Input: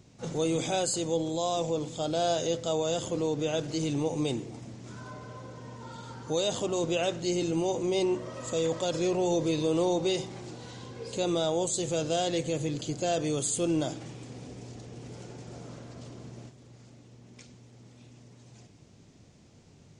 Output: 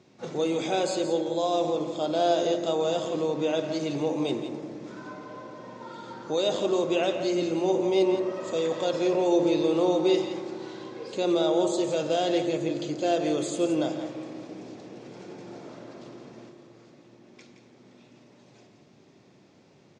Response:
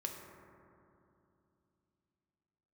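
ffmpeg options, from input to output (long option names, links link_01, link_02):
-filter_complex "[0:a]highpass=230,lowpass=4900,bandreject=frequency=3000:width=22,aecho=1:1:170:0.316,asplit=2[link_01][link_02];[1:a]atrim=start_sample=2205,highshelf=frequency=7700:gain=-10.5[link_03];[link_02][link_03]afir=irnorm=-1:irlink=0,volume=3dB[link_04];[link_01][link_04]amix=inputs=2:normalize=0,volume=-3.5dB"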